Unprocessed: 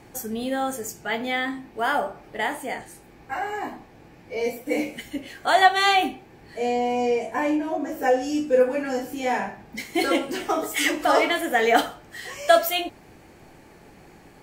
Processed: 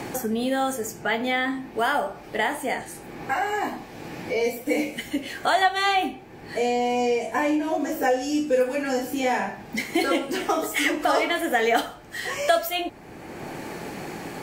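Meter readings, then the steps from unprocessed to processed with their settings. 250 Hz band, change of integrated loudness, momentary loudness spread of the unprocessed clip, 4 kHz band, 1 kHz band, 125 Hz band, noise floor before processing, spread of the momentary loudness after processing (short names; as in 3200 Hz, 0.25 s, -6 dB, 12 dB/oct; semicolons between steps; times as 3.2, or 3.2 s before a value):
+1.0 dB, -1.0 dB, 14 LU, -1.5 dB, -1.0 dB, +4.5 dB, -50 dBFS, 13 LU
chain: three-band squash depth 70%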